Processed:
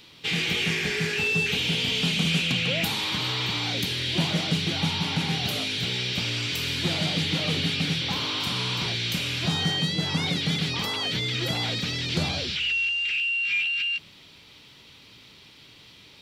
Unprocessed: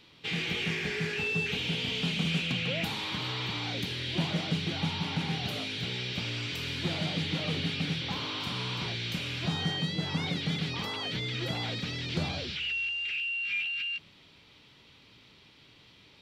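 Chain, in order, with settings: high shelf 5200 Hz +10.5 dB; gain +4.5 dB

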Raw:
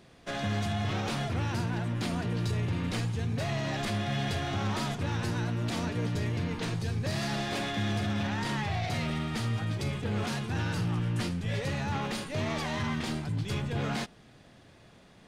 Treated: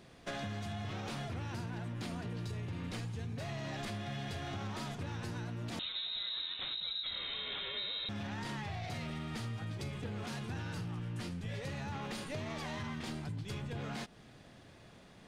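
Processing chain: compressor 10:1, threshold -36 dBFS, peak gain reduction 10 dB; 5.79–8.09 inverted band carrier 3900 Hz; gain -1 dB

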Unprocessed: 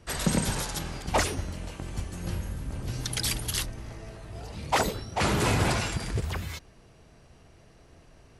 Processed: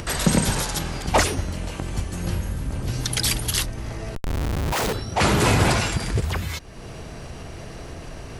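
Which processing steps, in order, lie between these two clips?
4.15–4.93 Schmitt trigger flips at -36 dBFS; upward compressor, threshold -30 dBFS; gain +6.5 dB

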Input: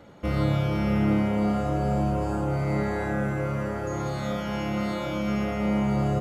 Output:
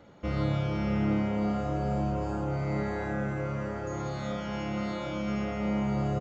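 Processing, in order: downsampling 16000 Hz; gain -4.5 dB

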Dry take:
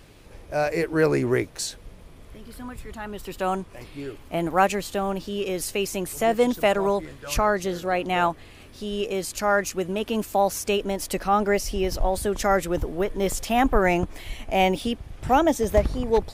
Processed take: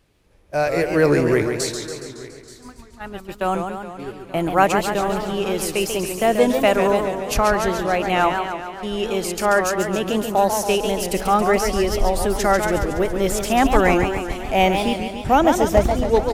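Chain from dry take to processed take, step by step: gate -33 dBFS, range -16 dB; echo 0.88 s -19.5 dB; warbling echo 0.14 s, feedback 62%, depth 165 cents, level -6.5 dB; gain +3.5 dB

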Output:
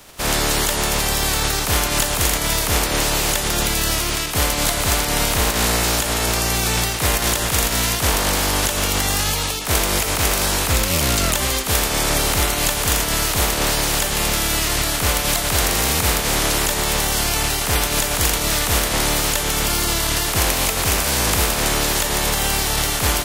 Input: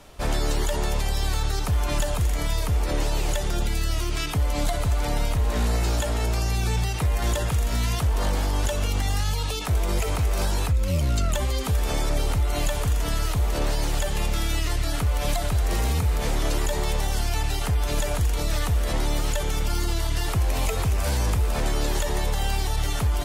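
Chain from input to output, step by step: spectral contrast lowered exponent 0.48; gain +3.5 dB

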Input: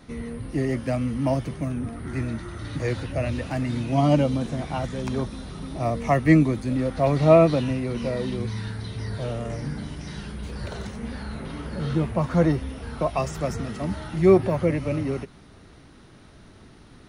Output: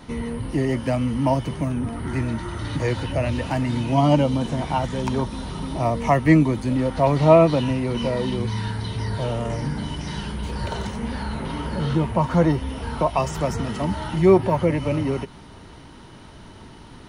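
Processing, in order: small resonant body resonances 930/3000 Hz, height 12 dB, ringing for 40 ms; in parallel at -1 dB: compressor, threshold -29 dBFS, peak gain reduction 18.5 dB

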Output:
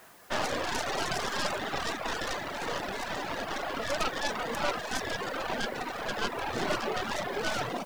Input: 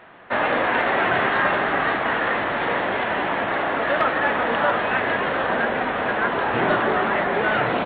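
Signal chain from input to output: tracing distortion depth 0.35 ms; reverb removal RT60 1.5 s; added noise white -50 dBFS; gain -8.5 dB

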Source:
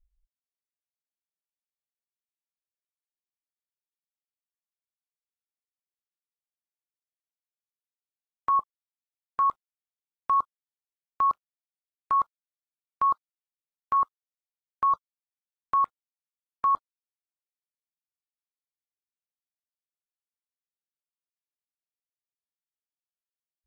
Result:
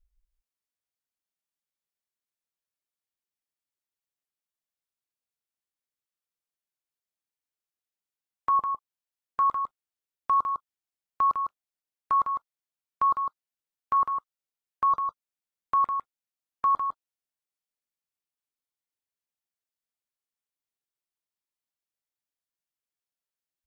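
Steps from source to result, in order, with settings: echo 0.154 s -6.5 dB

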